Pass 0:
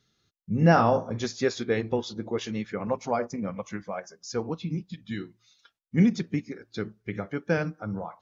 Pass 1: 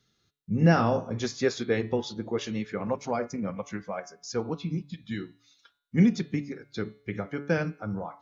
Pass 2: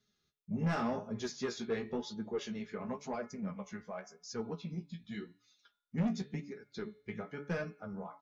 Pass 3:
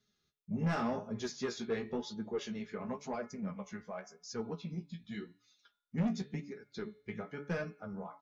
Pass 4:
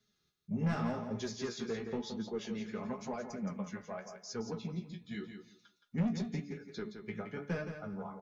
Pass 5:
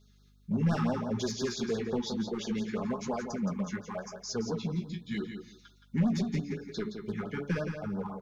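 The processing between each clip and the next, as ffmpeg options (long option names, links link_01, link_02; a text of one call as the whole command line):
ffmpeg -i in.wav -filter_complex "[0:a]bandreject=frequency=142.8:width_type=h:width=4,bandreject=frequency=285.6:width_type=h:width=4,bandreject=frequency=428.4:width_type=h:width=4,bandreject=frequency=571.2:width_type=h:width=4,bandreject=frequency=714:width_type=h:width=4,bandreject=frequency=856.8:width_type=h:width=4,bandreject=frequency=999.6:width_type=h:width=4,bandreject=frequency=1142.4:width_type=h:width=4,bandreject=frequency=1285.2:width_type=h:width=4,bandreject=frequency=1428:width_type=h:width=4,bandreject=frequency=1570.8:width_type=h:width=4,bandreject=frequency=1713.6:width_type=h:width=4,bandreject=frequency=1856.4:width_type=h:width=4,bandreject=frequency=1999.2:width_type=h:width=4,bandreject=frequency=2142:width_type=h:width=4,bandreject=frequency=2284.8:width_type=h:width=4,bandreject=frequency=2427.6:width_type=h:width=4,bandreject=frequency=2570.4:width_type=h:width=4,bandreject=frequency=2713.2:width_type=h:width=4,bandreject=frequency=2856:width_type=h:width=4,bandreject=frequency=2998.8:width_type=h:width=4,bandreject=frequency=3141.6:width_type=h:width=4,bandreject=frequency=3284.4:width_type=h:width=4,bandreject=frequency=3427.2:width_type=h:width=4,bandreject=frequency=3570:width_type=h:width=4,bandreject=frequency=3712.8:width_type=h:width=4,bandreject=frequency=3855.6:width_type=h:width=4,bandreject=frequency=3998.4:width_type=h:width=4,bandreject=frequency=4141.2:width_type=h:width=4,bandreject=frequency=4284:width_type=h:width=4,bandreject=frequency=4426.8:width_type=h:width=4,acrossover=split=510|1300[link_01][link_02][link_03];[link_02]alimiter=limit=-24dB:level=0:latency=1:release=286[link_04];[link_01][link_04][link_03]amix=inputs=3:normalize=0" out.wav
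ffmpeg -i in.wav -af "aecho=1:1:4.8:0.52,asoftclip=type=tanh:threshold=-19.5dB,flanger=delay=9.3:depth=8.8:regen=28:speed=0.91:shape=sinusoidal,volume=-5dB" out.wav
ffmpeg -i in.wav -af anull out.wav
ffmpeg -i in.wav -filter_complex "[0:a]acrossover=split=240[link_01][link_02];[link_02]acompressor=threshold=-39dB:ratio=2.5[link_03];[link_01][link_03]amix=inputs=2:normalize=0,aecho=1:1:170|340|510:0.398|0.0756|0.0144,volume=1dB" out.wav
ffmpeg -i in.wav -filter_complex "[0:a]asplit=2[link_01][link_02];[link_02]asoftclip=type=hard:threshold=-37dB,volume=-3dB[link_03];[link_01][link_03]amix=inputs=2:normalize=0,aeval=exprs='val(0)+0.000631*(sin(2*PI*50*n/s)+sin(2*PI*2*50*n/s)/2+sin(2*PI*3*50*n/s)/3+sin(2*PI*4*50*n/s)/4+sin(2*PI*5*50*n/s)/5)':channel_layout=same,afftfilt=real='re*(1-between(b*sr/1024,520*pow(2500/520,0.5+0.5*sin(2*PI*5.8*pts/sr))/1.41,520*pow(2500/520,0.5+0.5*sin(2*PI*5.8*pts/sr))*1.41))':imag='im*(1-between(b*sr/1024,520*pow(2500/520,0.5+0.5*sin(2*PI*5.8*pts/sr))/1.41,520*pow(2500/520,0.5+0.5*sin(2*PI*5.8*pts/sr))*1.41))':win_size=1024:overlap=0.75,volume=3dB" out.wav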